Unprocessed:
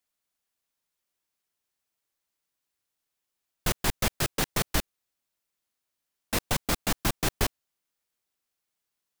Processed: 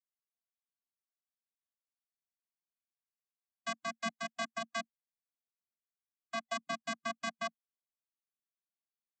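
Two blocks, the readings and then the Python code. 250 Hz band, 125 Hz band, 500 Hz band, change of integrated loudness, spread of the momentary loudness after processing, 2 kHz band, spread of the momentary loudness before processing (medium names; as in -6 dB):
-12.5 dB, -25.0 dB, -7.5 dB, -10.5 dB, 4 LU, -6.0 dB, 4 LU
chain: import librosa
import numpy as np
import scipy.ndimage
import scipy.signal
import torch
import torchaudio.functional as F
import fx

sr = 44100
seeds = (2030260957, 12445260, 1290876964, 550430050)

y = fx.vocoder(x, sr, bands=16, carrier='square', carrier_hz=227.0)
y = fx.hpss(y, sr, part='harmonic', gain_db=-17)
y = fx.low_shelf_res(y, sr, hz=690.0, db=-7.0, q=1.5)
y = y * librosa.db_to_amplitude(2.5)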